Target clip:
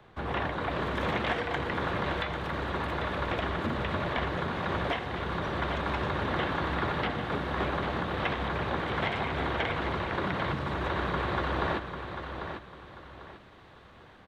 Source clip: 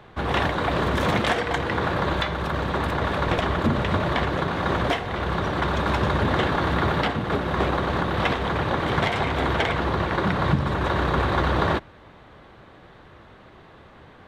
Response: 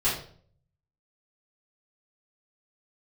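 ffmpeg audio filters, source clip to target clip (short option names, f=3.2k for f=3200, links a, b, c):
-filter_complex "[0:a]acrossover=split=3300[a][b];[b]acompressor=threshold=-51dB:ratio=4:attack=1:release=60[c];[a][c]amix=inputs=2:normalize=0,acrossover=split=250|2100[d][e][f];[d]alimiter=limit=-22.5dB:level=0:latency=1[g];[f]dynaudnorm=f=430:g=3:m=5dB[h];[g][e][h]amix=inputs=3:normalize=0,aecho=1:1:795|1590|2385|3180:0.398|0.123|0.0383|0.0119,volume=-8dB"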